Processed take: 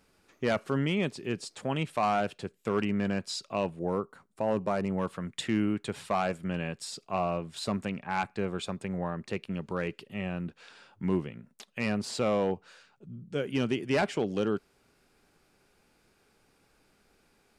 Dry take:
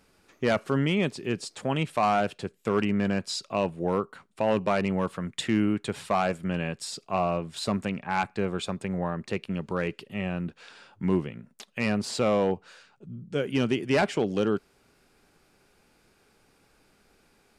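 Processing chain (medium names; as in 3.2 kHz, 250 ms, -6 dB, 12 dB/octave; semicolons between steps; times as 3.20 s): 3.79–4.98 s: peaking EQ 2.9 kHz -9 dB 1.5 oct; trim -3.5 dB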